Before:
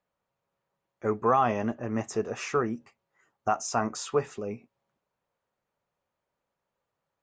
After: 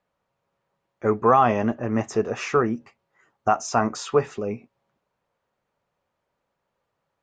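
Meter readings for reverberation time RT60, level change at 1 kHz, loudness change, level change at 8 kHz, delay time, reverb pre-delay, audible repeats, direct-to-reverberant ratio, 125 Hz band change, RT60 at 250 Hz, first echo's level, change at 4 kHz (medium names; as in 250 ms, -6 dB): no reverb, +6.0 dB, +6.0 dB, +1.5 dB, no echo, no reverb, no echo, no reverb, +6.5 dB, no reverb, no echo, +4.0 dB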